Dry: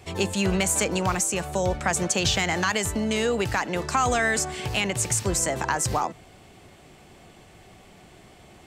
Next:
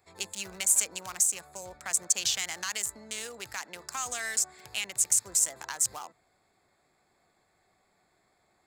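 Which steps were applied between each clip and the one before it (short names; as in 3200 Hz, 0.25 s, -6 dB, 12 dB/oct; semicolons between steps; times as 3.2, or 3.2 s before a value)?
Wiener smoothing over 15 samples; pre-emphasis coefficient 0.97; gain +2.5 dB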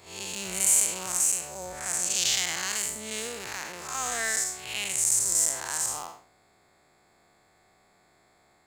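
time blur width 0.187 s; gain +8.5 dB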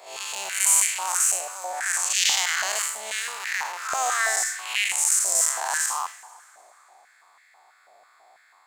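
plate-style reverb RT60 3.1 s, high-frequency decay 0.8×, DRR 16 dB; stepped high-pass 6.1 Hz 650–1900 Hz; gain +2.5 dB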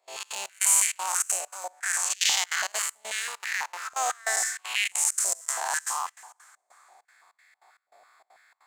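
step gate ".xx.xx..xxxx.xxx" 197 bpm -24 dB; gain -2 dB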